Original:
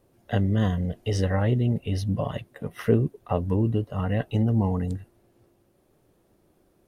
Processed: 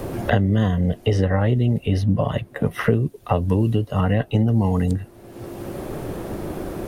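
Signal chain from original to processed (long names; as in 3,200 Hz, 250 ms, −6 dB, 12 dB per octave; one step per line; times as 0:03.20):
multiband upward and downward compressor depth 100%
level +4.5 dB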